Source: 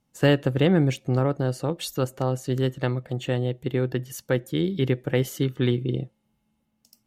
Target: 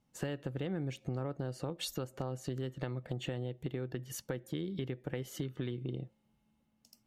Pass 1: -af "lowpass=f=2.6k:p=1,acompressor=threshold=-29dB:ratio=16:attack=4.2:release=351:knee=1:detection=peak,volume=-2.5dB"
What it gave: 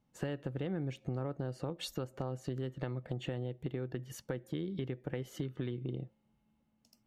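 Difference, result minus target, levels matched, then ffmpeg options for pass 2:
8000 Hz band -5.5 dB
-af "lowpass=f=7.2k:p=1,acompressor=threshold=-29dB:ratio=16:attack=4.2:release=351:knee=1:detection=peak,volume=-2.5dB"

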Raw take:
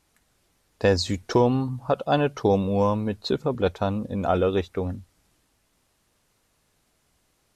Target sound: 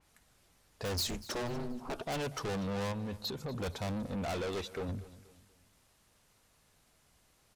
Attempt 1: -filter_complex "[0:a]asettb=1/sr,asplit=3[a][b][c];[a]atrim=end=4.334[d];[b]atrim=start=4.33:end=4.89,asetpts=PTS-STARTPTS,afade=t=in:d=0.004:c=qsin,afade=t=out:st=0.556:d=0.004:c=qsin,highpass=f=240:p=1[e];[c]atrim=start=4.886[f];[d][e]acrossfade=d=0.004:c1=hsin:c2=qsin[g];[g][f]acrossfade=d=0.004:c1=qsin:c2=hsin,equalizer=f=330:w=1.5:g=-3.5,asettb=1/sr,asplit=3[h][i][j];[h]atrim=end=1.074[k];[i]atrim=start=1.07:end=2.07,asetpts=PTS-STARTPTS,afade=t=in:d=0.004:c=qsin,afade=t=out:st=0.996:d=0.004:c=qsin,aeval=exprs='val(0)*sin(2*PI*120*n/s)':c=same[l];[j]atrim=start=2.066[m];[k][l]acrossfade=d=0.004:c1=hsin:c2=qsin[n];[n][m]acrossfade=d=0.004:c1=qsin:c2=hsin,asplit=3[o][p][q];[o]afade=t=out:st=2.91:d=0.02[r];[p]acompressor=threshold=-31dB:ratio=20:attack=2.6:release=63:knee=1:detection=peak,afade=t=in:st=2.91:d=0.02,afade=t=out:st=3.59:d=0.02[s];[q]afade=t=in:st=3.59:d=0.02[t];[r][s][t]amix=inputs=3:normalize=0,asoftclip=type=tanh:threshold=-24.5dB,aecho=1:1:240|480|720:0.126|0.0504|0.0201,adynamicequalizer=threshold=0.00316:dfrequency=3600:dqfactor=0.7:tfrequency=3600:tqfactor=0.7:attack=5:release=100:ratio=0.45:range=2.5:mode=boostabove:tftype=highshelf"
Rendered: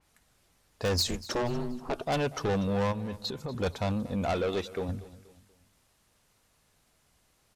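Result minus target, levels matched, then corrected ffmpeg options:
soft clip: distortion -5 dB
-filter_complex "[0:a]asettb=1/sr,asplit=3[a][b][c];[a]atrim=end=4.334[d];[b]atrim=start=4.33:end=4.89,asetpts=PTS-STARTPTS,afade=t=in:d=0.004:c=qsin,afade=t=out:st=0.556:d=0.004:c=qsin,highpass=f=240:p=1[e];[c]atrim=start=4.886[f];[d][e]acrossfade=d=0.004:c1=hsin:c2=qsin[g];[g][f]acrossfade=d=0.004:c1=qsin:c2=hsin,equalizer=f=330:w=1.5:g=-3.5,asettb=1/sr,asplit=3[h][i][j];[h]atrim=end=1.074[k];[i]atrim=start=1.07:end=2.07,asetpts=PTS-STARTPTS,afade=t=in:d=0.004:c=qsin,afade=t=out:st=0.996:d=0.004:c=qsin,aeval=exprs='val(0)*sin(2*PI*120*n/s)':c=same[l];[j]atrim=start=2.066[m];[k][l]acrossfade=d=0.004:c1=hsin:c2=qsin[n];[n][m]acrossfade=d=0.004:c1=qsin:c2=hsin,asplit=3[o][p][q];[o]afade=t=out:st=2.91:d=0.02[r];[p]acompressor=threshold=-31dB:ratio=20:attack=2.6:release=63:knee=1:detection=peak,afade=t=in:st=2.91:d=0.02,afade=t=out:st=3.59:d=0.02[s];[q]afade=t=in:st=3.59:d=0.02[t];[r][s][t]amix=inputs=3:normalize=0,asoftclip=type=tanh:threshold=-34dB,aecho=1:1:240|480|720:0.126|0.0504|0.0201,adynamicequalizer=threshold=0.00316:dfrequency=3600:dqfactor=0.7:tfrequency=3600:tqfactor=0.7:attack=5:release=100:ratio=0.45:range=2.5:mode=boostabove:tftype=highshelf"

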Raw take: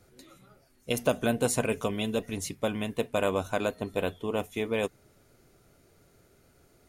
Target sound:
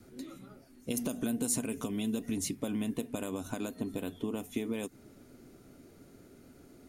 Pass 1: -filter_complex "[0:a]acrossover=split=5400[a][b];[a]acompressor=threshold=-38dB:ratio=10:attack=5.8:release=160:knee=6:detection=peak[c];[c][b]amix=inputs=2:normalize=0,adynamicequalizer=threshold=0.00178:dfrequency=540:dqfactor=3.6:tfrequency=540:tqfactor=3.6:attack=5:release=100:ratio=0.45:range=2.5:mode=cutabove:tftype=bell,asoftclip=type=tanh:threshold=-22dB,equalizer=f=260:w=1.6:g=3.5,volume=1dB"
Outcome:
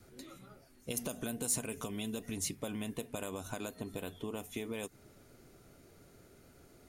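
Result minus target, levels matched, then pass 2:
soft clip: distortion +14 dB; 250 Hz band -4.0 dB
-filter_complex "[0:a]acrossover=split=5400[a][b];[a]acompressor=threshold=-38dB:ratio=10:attack=5.8:release=160:knee=6:detection=peak[c];[c][b]amix=inputs=2:normalize=0,adynamicequalizer=threshold=0.00178:dfrequency=540:dqfactor=3.6:tfrequency=540:tqfactor=3.6:attack=5:release=100:ratio=0.45:range=2.5:mode=cutabove:tftype=bell,asoftclip=type=tanh:threshold=-14dB,equalizer=f=260:w=1.6:g=13.5,volume=1dB"

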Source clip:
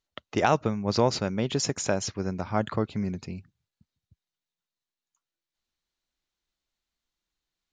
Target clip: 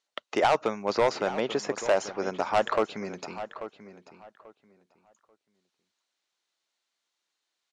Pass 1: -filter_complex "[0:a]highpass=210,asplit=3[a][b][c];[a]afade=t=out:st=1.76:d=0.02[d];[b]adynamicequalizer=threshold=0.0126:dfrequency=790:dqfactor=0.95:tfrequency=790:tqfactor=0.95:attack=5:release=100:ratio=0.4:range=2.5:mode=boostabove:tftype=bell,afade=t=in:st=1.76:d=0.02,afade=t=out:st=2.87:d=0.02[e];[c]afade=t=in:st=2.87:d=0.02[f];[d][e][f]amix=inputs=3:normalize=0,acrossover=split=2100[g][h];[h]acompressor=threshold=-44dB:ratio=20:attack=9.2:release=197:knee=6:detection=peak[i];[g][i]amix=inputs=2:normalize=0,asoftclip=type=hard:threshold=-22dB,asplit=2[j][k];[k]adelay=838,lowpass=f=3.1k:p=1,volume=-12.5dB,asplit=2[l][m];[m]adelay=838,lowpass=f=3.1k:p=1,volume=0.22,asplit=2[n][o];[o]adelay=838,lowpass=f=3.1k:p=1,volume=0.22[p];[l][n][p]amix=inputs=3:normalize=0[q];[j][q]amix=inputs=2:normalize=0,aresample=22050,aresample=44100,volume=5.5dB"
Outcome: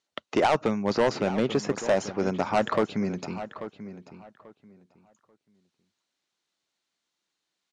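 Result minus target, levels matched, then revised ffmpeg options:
250 Hz band +6.0 dB
-filter_complex "[0:a]highpass=450,asplit=3[a][b][c];[a]afade=t=out:st=1.76:d=0.02[d];[b]adynamicequalizer=threshold=0.0126:dfrequency=790:dqfactor=0.95:tfrequency=790:tqfactor=0.95:attack=5:release=100:ratio=0.4:range=2.5:mode=boostabove:tftype=bell,afade=t=in:st=1.76:d=0.02,afade=t=out:st=2.87:d=0.02[e];[c]afade=t=in:st=2.87:d=0.02[f];[d][e][f]amix=inputs=3:normalize=0,acrossover=split=2100[g][h];[h]acompressor=threshold=-44dB:ratio=20:attack=9.2:release=197:knee=6:detection=peak[i];[g][i]amix=inputs=2:normalize=0,asoftclip=type=hard:threshold=-22dB,asplit=2[j][k];[k]adelay=838,lowpass=f=3.1k:p=1,volume=-12.5dB,asplit=2[l][m];[m]adelay=838,lowpass=f=3.1k:p=1,volume=0.22,asplit=2[n][o];[o]adelay=838,lowpass=f=3.1k:p=1,volume=0.22[p];[l][n][p]amix=inputs=3:normalize=0[q];[j][q]amix=inputs=2:normalize=0,aresample=22050,aresample=44100,volume=5.5dB"

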